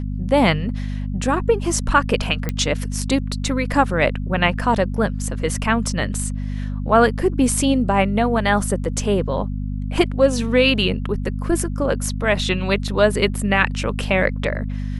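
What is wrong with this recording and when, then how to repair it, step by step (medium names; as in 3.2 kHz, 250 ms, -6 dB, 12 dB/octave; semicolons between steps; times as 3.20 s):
hum 50 Hz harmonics 5 -25 dBFS
2.49 s: pop -9 dBFS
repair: de-click; de-hum 50 Hz, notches 5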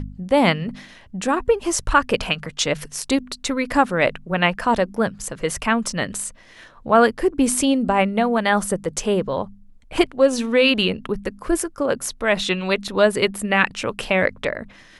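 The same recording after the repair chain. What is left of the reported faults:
nothing left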